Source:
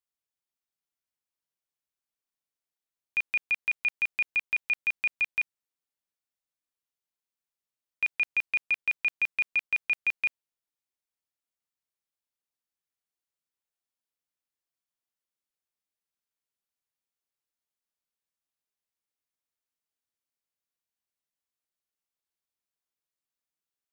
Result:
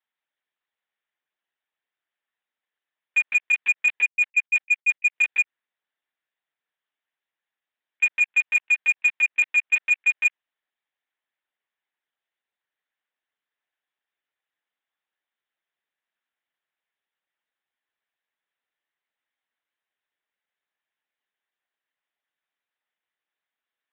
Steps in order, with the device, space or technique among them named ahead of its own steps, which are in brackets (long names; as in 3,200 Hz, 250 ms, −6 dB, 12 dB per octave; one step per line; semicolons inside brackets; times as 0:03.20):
0:04.05–0:05.15: noise gate −33 dBFS, range −27 dB
talking toy (linear-prediction vocoder at 8 kHz pitch kept; high-pass filter 360 Hz 12 dB per octave; parametric band 1,800 Hz +8 dB 0.41 octaves; soft clipping −18.5 dBFS, distortion −20 dB)
level +7.5 dB